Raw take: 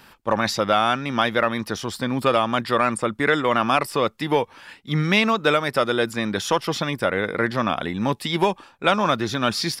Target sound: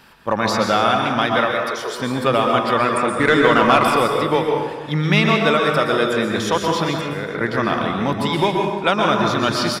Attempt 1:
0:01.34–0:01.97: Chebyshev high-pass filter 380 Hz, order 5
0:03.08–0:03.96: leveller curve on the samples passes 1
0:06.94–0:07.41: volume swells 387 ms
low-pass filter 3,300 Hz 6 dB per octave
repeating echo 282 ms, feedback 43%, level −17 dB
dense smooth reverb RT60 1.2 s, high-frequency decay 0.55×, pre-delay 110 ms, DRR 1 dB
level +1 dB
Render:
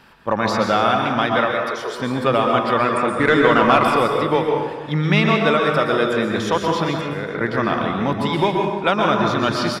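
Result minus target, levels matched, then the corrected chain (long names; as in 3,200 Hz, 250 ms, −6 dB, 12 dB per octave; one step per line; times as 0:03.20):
8,000 Hz band −5.0 dB
0:01.34–0:01.97: Chebyshev high-pass filter 380 Hz, order 5
0:03.08–0:03.96: leveller curve on the samples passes 1
0:06.94–0:07.41: volume swells 387 ms
low-pass filter 10,000 Hz 6 dB per octave
repeating echo 282 ms, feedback 43%, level −17 dB
dense smooth reverb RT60 1.2 s, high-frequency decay 0.55×, pre-delay 110 ms, DRR 1 dB
level +1 dB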